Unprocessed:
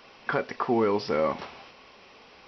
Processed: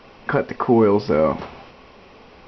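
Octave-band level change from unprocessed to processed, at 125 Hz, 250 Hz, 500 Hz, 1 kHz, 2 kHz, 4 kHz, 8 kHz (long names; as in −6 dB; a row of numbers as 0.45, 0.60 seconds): +12.5 dB, +10.0 dB, +8.5 dB, +5.5 dB, +3.5 dB, +0.5 dB, can't be measured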